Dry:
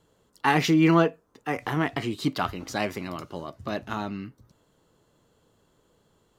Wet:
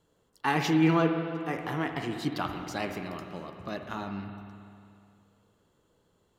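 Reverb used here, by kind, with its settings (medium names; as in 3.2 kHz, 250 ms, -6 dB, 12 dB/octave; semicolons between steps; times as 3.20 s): spring tank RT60 2.5 s, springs 50/60 ms, chirp 55 ms, DRR 5 dB; trim -5.5 dB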